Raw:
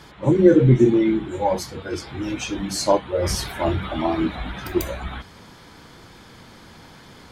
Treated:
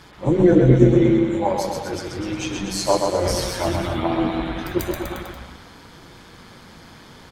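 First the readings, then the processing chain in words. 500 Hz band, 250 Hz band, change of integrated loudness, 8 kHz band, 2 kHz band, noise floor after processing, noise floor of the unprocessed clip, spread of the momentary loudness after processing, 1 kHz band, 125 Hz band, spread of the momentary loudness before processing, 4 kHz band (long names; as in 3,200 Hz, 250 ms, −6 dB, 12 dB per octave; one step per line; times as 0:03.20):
+1.0 dB, +1.0 dB, +1.0 dB, +1.0 dB, +1.0 dB, −45 dBFS, −46 dBFS, 15 LU, +1.5 dB, +1.5 dB, 16 LU, +1.5 dB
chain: amplitude modulation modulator 180 Hz, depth 40%
on a send: bouncing-ball delay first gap 130 ms, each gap 0.9×, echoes 5
on the sum: level +1.5 dB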